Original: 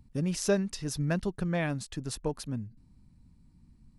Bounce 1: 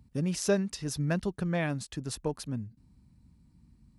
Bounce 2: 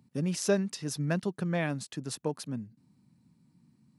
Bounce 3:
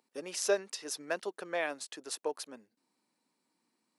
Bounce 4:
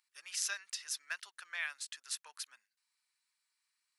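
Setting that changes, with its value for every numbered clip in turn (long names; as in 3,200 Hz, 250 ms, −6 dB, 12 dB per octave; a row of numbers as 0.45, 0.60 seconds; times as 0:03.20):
high-pass filter, corner frequency: 40, 130, 400, 1,400 Hertz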